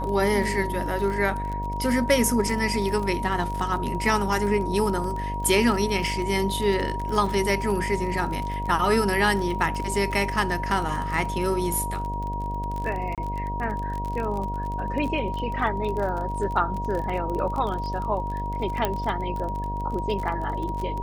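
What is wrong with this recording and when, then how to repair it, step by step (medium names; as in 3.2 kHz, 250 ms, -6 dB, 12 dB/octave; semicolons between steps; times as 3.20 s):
buzz 50 Hz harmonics 15 -31 dBFS
crackle 31 per s -29 dBFS
whine 950 Hz -30 dBFS
13.15–13.18 s: dropout 27 ms
18.85 s: pop -10 dBFS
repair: de-click; de-hum 50 Hz, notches 15; band-stop 950 Hz, Q 30; interpolate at 13.15 s, 27 ms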